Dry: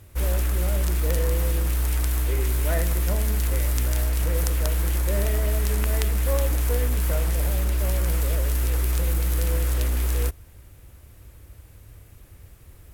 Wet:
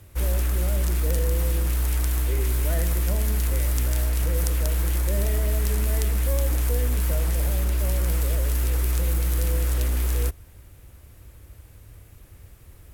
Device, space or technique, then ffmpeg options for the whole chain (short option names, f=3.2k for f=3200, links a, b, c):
one-band saturation: -filter_complex "[0:a]acrossover=split=370|4000[a][b][c];[b]asoftclip=type=tanh:threshold=-31dB[d];[a][d][c]amix=inputs=3:normalize=0"